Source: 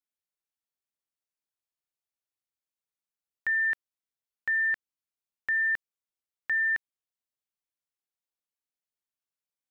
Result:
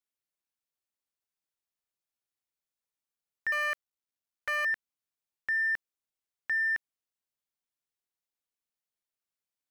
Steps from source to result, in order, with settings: 3.52–4.65 cycle switcher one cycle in 3, muted; in parallel at -10 dB: soft clip -34.5 dBFS, distortion -11 dB; on the sum: gain -3 dB

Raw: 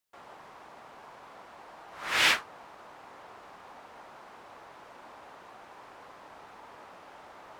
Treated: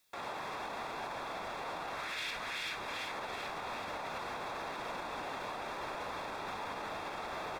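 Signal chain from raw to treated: echo 0.391 s -11 dB; compressor, threshold -44 dBFS, peak gain reduction 22 dB; frequency-shifting echo 0.384 s, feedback 60%, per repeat -110 Hz, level -6.5 dB; limiter -43 dBFS, peak gain reduction 10.5 dB; Butterworth band-stop 3000 Hz, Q 6.3; bell 3200 Hz +8 dB 0.76 oct; gain +10.5 dB

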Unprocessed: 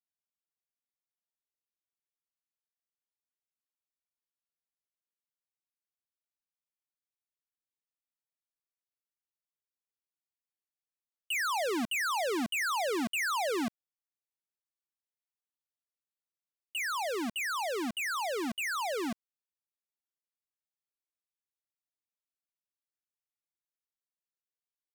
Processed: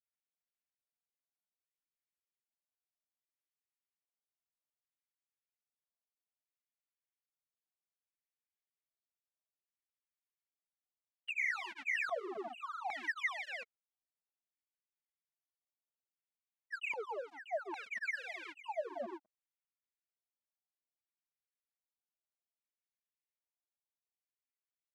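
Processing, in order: grains 0.1 s, grains 20/s, spray 0.139 s; LFO band-pass square 0.62 Hz 660–2100 Hz; tape flanging out of phase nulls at 0.26 Hz, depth 7.2 ms; gain +2.5 dB

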